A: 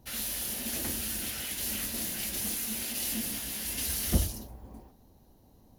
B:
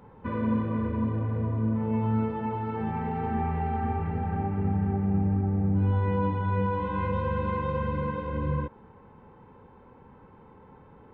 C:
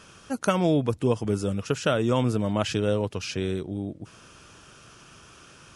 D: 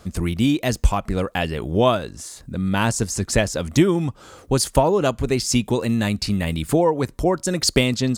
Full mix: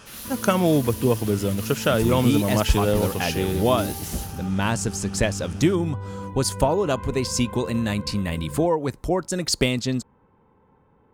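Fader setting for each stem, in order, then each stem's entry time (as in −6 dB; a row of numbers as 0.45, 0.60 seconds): −3.5, −7.5, +3.0, −3.5 decibels; 0.00, 0.00, 0.00, 1.85 seconds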